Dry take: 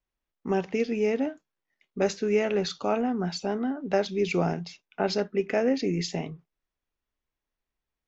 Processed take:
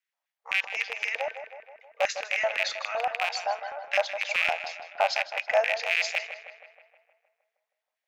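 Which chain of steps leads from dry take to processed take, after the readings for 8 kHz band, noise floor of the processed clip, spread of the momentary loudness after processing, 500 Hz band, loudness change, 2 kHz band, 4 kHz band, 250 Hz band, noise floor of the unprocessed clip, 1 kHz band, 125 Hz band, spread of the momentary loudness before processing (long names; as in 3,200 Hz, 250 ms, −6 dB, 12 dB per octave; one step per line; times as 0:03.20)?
can't be measured, below −85 dBFS, 12 LU, −4.5 dB, 0.0 dB, +10.5 dB, +4.5 dB, below −35 dB, below −85 dBFS, +3.5 dB, below −30 dB, 8 LU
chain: loose part that buzzes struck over −29 dBFS, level −17 dBFS
linear-phase brick-wall high-pass 460 Hz
auto-filter high-pass square 3.9 Hz 730–1,900 Hz
tape delay 157 ms, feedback 63%, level −9 dB, low-pass 3,000 Hz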